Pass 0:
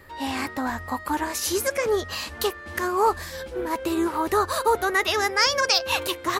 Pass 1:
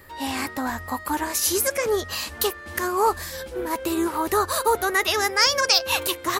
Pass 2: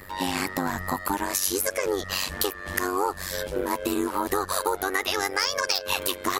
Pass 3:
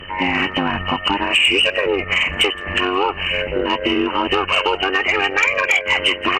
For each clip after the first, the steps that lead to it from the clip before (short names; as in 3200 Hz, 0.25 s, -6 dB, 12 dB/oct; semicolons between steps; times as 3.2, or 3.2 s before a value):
high shelf 7300 Hz +9.5 dB
wavefolder -8.5 dBFS; AM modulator 95 Hz, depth 85%; compressor 4:1, threshold -31 dBFS, peak gain reduction 12 dB; gain +8 dB
nonlinear frequency compression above 1800 Hz 4:1; in parallel at -9 dB: sine folder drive 9 dB, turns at -6.5 dBFS; on the sum: echo 0.168 s -23 dB